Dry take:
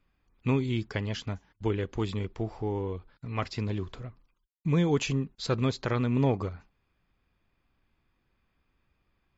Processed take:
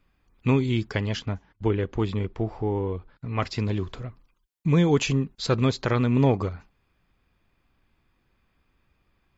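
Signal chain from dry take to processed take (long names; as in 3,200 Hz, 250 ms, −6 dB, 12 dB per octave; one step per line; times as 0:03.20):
0:01.19–0:03.40: low-pass filter 2,500 Hz 6 dB per octave
level +5 dB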